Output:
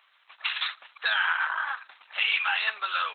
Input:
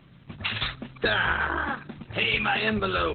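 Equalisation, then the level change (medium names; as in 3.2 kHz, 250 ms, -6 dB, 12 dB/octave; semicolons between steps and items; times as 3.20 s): high-pass 930 Hz 24 dB/octave; 0.0 dB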